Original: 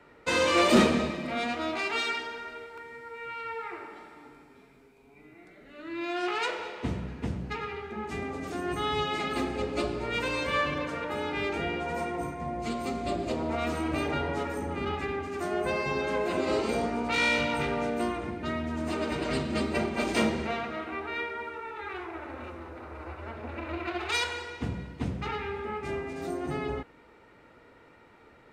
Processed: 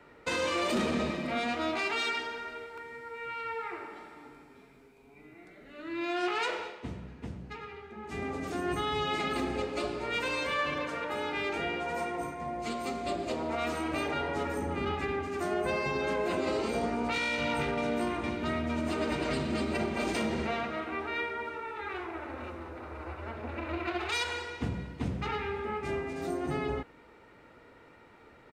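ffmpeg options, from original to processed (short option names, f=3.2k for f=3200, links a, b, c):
-filter_complex "[0:a]asettb=1/sr,asplit=3[a][b][c];[a]atrim=end=9.604[d];[b]atrim=start=9.6:end=14.36,asetpts=PTS-STARTPTS,afade=t=in:d=0.004:c=qsin,afade=t=out:st=4.756:d=0.004:c=qsin,lowshelf=f=260:g=-8.5[e];[c]atrim=start=14.356[f];[d][e]acrossfade=d=0.004:c1=hsin:c2=qsin[g];[g][f]acrossfade=d=0.004:c1=qsin:c2=hsin,asplit=2[h][i];[i]afade=t=in:st=17.31:d=0.01,afade=t=out:st=17.98:d=0.01,aecho=0:1:460|920|1380|1840|2300|2760|3220|3680|4140|4600|5060|5520:0.266073|0.199554|0.149666|0.112249|0.084187|0.0631403|0.0473552|0.0355164|0.0266373|0.019978|0.0149835|0.0112376[j];[h][j]amix=inputs=2:normalize=0,asplit=3[k][l][m];[k]atrim=end=6.81,asetpts=PTS-STARTPTS,afade=t=out:st=6.56:d=0.25:silence=0.398107[n];[l]atrim=start=6.81:end=8.02,asetpts=PTS-STARTPTS,volume=-8dB[o];[m]atrim=start=8.02,asetpts=PTS-STARTPTS,afade=t=in:d=0.25:silence=0.398107[p];[n][o][p]concat=n=3:v=0:a=1,alimiter=limit=-22dB:level=0:latency=1:release=58"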